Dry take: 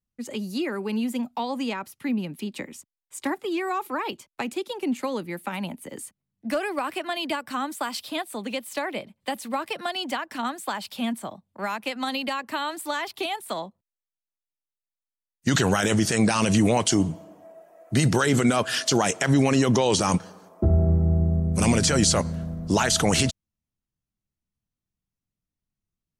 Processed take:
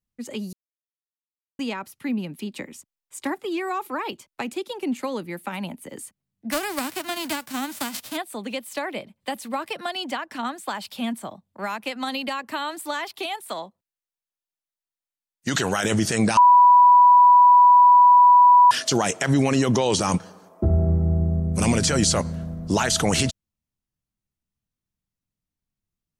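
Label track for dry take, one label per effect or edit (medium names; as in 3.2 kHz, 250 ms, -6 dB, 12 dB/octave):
0.530000	1.590000	mute
6.510000	8.160000	formants flattened exponent 0.3
10.090000	10.680000	treble shelf 11 kHz -6.5 dB
13.040000	15.850000	bass shelf 230 Hz -8.5 dB
16.370000	18.710000	bleep 983 Hz -9 dBFS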